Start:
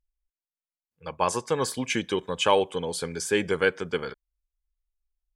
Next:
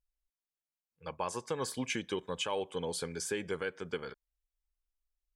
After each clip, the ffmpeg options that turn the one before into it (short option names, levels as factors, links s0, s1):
-af "alimiter=limit=0.133:level=0:latency=1:release=310,volume=0.531"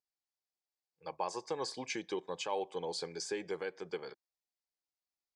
-af "highpass=200,equalizer=f=240:t=q:w=4:g=-8,equalizer=f=340:t=q:w=4:g=4,equalizer=f=780:t=q:w=4:g=7,equalizer=f=1400:t=q:w=4:g=-7,equalizer=f=3000:t=q:w=4:g=-6,equalizer=f=4700:t=q:w=4:g=7,lowpass=f=7400:w=0.5412,lowpass=f=7400:w=1.3066,volume=0.75"